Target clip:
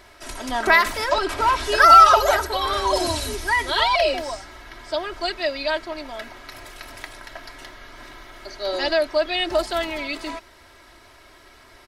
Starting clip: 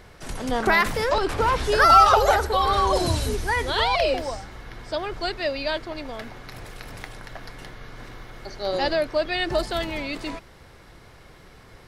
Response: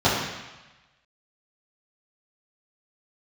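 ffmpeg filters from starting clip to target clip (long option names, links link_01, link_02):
-af "lowshelf=frequency=370:gain=-11,aecho=1:1:3.1:0.76,volume=1.5dB"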